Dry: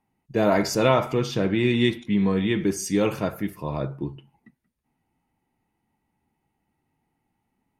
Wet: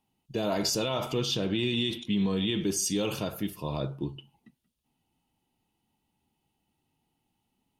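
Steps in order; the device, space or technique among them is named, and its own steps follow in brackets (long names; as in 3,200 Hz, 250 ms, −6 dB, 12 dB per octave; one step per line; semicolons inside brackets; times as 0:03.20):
over-bright horn tweeter (high shelf with overshoot 2,500 Hz +6 dB, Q 3; brickwall limiter −16 dBFS, peak gain reduction 11 dB)
level −3 dB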